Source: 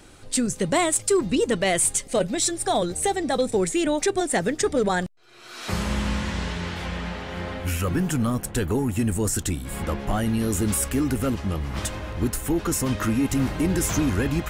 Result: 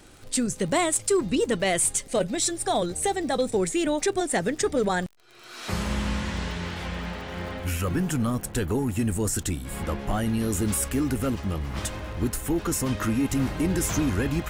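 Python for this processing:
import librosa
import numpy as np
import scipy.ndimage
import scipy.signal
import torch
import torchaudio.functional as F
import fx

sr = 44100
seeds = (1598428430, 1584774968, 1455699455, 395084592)

y = fx.dmg_crackle(x, sr, seeds[0], per_s=68.0, level_db=-36.0)
y = y * librosa.db_to_amplitude(-2.0)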